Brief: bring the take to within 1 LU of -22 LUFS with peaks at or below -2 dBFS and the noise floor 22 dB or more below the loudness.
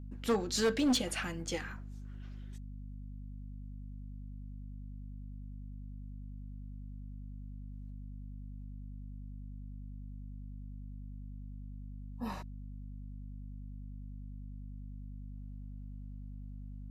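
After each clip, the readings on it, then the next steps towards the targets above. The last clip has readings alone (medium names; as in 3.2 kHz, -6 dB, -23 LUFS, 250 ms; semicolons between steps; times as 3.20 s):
clipped samples 0.3%; clipping level -24.0 dBFS; hum 50 Hz; highest harmonic 250 Hz; hum level -42 dBFS; loudness -41.5 LUFS; peak level -24.0 dBFS; loudness target -22.0 LUFS
-> clip repair -24 dBFS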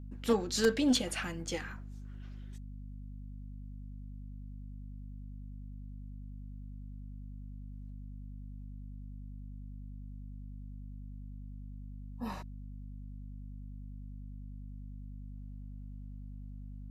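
clipped samples 0.0%; hum 50 Hz; highest harmonic 250 Hz; hum level -42 dBFS
-> hum notches 50/100/150/200/250 Hz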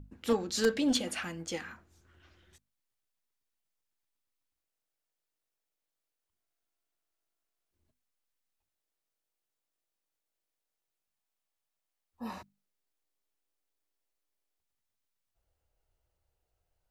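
hum not found; loudness -32.5 LUFS; peak level -14.5 dBFS; loudness target -22.0 LUFS
-> trim +10.5 dB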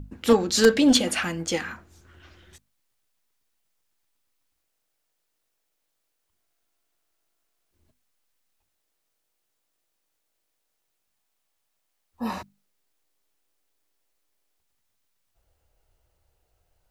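loudness -22.0 LUFS; peak level -4.0 dBFS; noise floor -77 dBFS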